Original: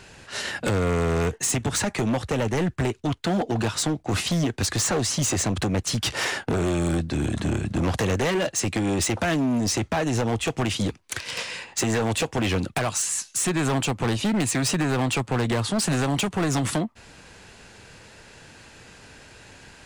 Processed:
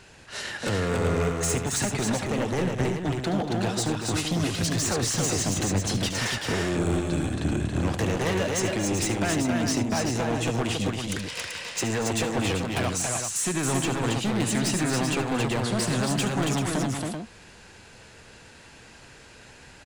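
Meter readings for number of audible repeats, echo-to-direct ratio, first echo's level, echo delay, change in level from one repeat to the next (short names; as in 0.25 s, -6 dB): 4, -1.0 dB, -11.5 dB, 73 ms, no steady repeat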